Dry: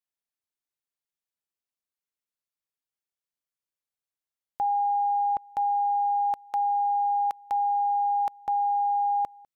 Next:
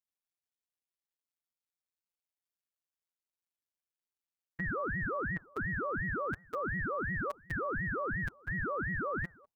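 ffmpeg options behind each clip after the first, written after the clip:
ffmpeg -i in.wav -af "bandreject=frequency=60:width_type=h:width=6,bandreject=frequency=120:width_type=h:width=6,bandreject=frequency=180:width_type=h:width=6,bandreject=frequency=240:width_type=h:width=6,bandreject=frequency=300:width_type=h:width=6,bandreject=frequency=360:width_type=h:width=6,bandreject=frequency=420:width_type=h:width=6,bandreject=frequency=480:width_type=h:width=6,bandreject=frequency=540:width_type=h:width=6,afftfilt=real='hypot(re,im)*cos(PI*b)':imag='0':win_size=1024:overlap=0.75,aeval=exprs='val(0)*sin(2*PI*660*n/s+660*0.6/2.8*sin(2*PI*2.8*n/s))':channel_layout=same" out.wav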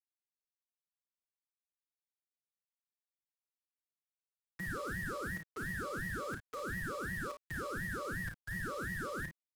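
ffmpeg -i in.wav -filter_complex "[0:a]acrossover=split=150|400|1100[link_01][link_02][link_03][link_04];[link_03]asoftclip=type=tanh:threshold=-38dB[link_05];[link_01][link_02][link_05][link_04]amix=inputs=4:normalize=0,acrusher=bits=6:mix=0:aa=0.5,aecho=1:1:34|53:0.447|0.376,volume=-5.5dB" out.wav

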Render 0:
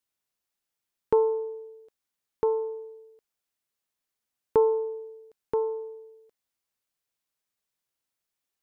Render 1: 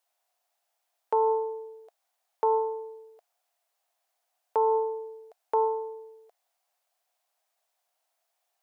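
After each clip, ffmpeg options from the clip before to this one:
ffmpeg -i in.wav -af "alimiter=limit=-22.5dB:level=0:latency=1,highpass=frequency=700:width_type=q:width=6.5,volume=5dB" out.wav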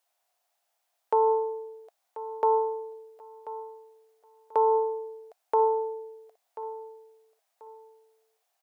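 ffmpeg -i in.wav -af "aecho=1:1:1037|2074|3111:0.178|0.0498|0.0139,volume=1.5dB" out.wav

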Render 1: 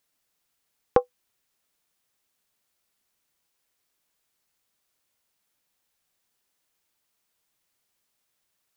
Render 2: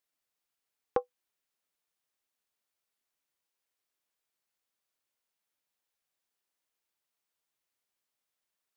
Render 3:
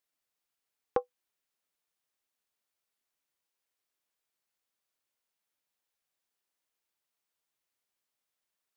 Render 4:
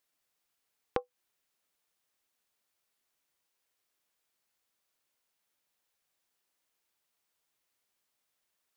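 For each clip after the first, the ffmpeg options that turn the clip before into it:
ffmpeg -i in.wav -af "bass=frequency=250:gain=-6,treble=frequency=4000:gain=-2,volume=-9dB" out.wav
ffmpeg -i in.wav -af anull out.wav
ffmpeg -i in.wav -af "acompressor=threshold=-34dB:ratio=6,volume=5dB" out.wav

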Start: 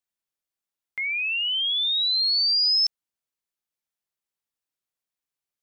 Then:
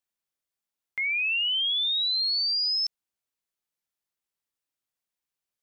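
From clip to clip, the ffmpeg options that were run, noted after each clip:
ffmpeg -i in.wav -af "alimiter=limit=-23dB:level=0:latency=1" out.wav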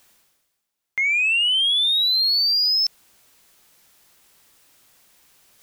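ffmpeg -i in.wav -af "areverse,acompressor=mode=upward:threshold=-45dB:ratio=2.5,areverse,asoftclip=type=tanh:threshold=-21dB,volume=8dB" out.wav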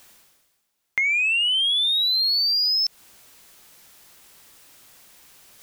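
ffmpeg -i in.wav -af "acompressor=threshold=-26dB:ratio=6,volume=5.5dB" out.wav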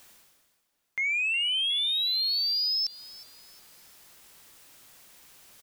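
ffmpeg -i in.wav -filter_complex "[0:a]alimiter=limit=-21.5dB:level=0:latency=1:release=21,asplit=2[link_01][link_02];[link_02]adelay=363,lowpass=frequency=4100:poles=1,volume=-16dB,asplit=2[link_03][link_04];[link_04]adelay=363,lowpass=frequency=4100:poles=1,volume=0.49,asplit=2[link_05][link_06];[link_06]adelay=363,lowpass=frequency=4100:poles=1,volume=0.49,asplit=2[link_07][link_08];[link_08]adelay=363,lowpass=frequency=4100:poles=1,volume=0.49[link_09];[link_01][link_03][link_05][link_07][link_09]amix=inputs=5:normalize=0,volume=-3dB" out.wav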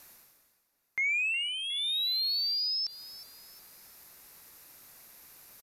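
ffmpeg -i in.wav -filter_complex "[0:a]equalizer=frequency=3150:width_type=o:width=0.33:gain=-9,equalizer=frequency=8000:width_type=o:width=0.33:gain=-4,equalizer=frequency=12500:width_type=o:width=0.33:gain=8,aresample=32000,aresample=44100,acrossover=split=4900[link_01][link_02];[link_02]acompressor=threshold=-40dB:ratio=4:attack=1:release=60[link_03];[link_01][link_03]amix=inputs=2:normalize=0" out.wav

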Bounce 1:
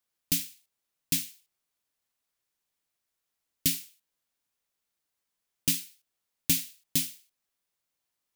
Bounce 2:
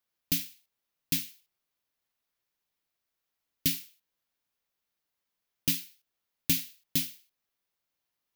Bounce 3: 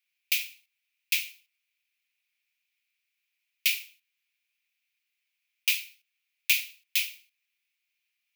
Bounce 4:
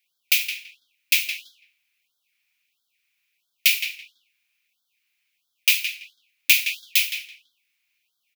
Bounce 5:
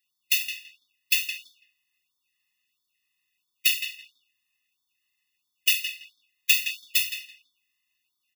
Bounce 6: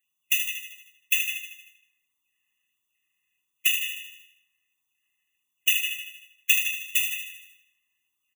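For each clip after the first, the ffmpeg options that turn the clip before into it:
ffmpeg -i in.wav -af "equalizer=frequency=8400:width_type=o:width=0.76:gain=-7.5" out.wav
ffmpeg -i in.wav -af "highpass=frequency=2400:width_type=q:width=6.9" out.wav
ffmpeg -i in.wav -filter_complex "[0:a]asplit=2[link_01][link_02];[link_02]adelay=166,lowpass=frequency=3000:poles=1,volume=-6dB,asplit=2[link_03][link_04];[link_04]adelay=166,lowpass=frequency=3000:poles=1,volume=0.23,asplit=2[link_05][link_06];[link_06]adelay=166,lowpass=frequency=3000:poles=1,volume=0.23[link_07];[link_01][link_03][link_05][link_07]amix=inputs=4:normalize=0,afftfilt=real='re*(1-between(b*sr/1024,390*pow(2300/390,0.5+0.5*sin(2*PI*1.5*pts/sr))/1.41,390*pow(2300/390,0.5+0.5*sin(2*PI*1.5*pts/sr))*1.41))':imag='im*(1-between(b*sr/1024,390*pow(2300/390,0.5+0.5*sin(2*PI*1.5*pts/sr))/1.41,390*pow(2300/390,0.5+0.5*sin(2*PI*1.5*pts/sr))*1.41))':win_size=1024:overlap=0.75,volume=7.5dB" out.wav
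ffmpeg -i in.wav -af "afftfilt=real='re*eq(mod(floor(b*sr/1024/420),2),0)':imag='im*eq(mod(floor(b*sr/1024/420),2),0)':win_size=1024:overlap=0.75" out.wav
ffmpeg -i in.wav -filter_complex "[0:a]asuperstop=centerf=4500:order=12:qfactor=1.9,asplit=2[link_01][link_02];[link_02]aecho=0:1:77|154|231|308|385|462|539:0.422|0.24|0.137|0.0781|0.0445|0.0254|0.0145[link_03];[link_01][link_03]amix=inputs=2:normalize=0" out.wav

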